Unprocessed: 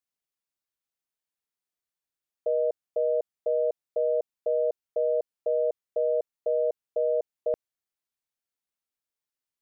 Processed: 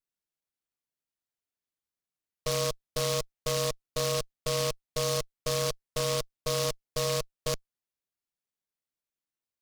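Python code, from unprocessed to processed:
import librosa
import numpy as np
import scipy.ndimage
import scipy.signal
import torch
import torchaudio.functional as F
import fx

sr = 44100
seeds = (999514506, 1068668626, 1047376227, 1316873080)

y = fx.lower_of_two(x, sr, delay_ms=0.52)
y = fx.noise_mod_delay(y, sr, seeds[0], noise_hz=4400.0, depth_ms=0.15)
y = F.gain(torch.from_numpy(y), -1.5).numpy()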